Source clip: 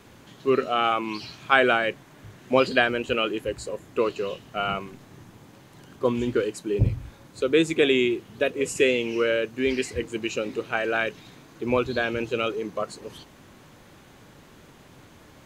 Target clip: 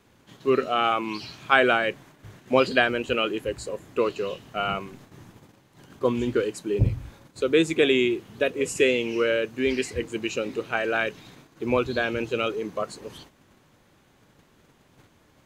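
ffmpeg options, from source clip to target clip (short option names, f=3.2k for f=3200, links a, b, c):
-af "agate=range=-9dB:threshold=-48dB:ratio=16:detection=peak"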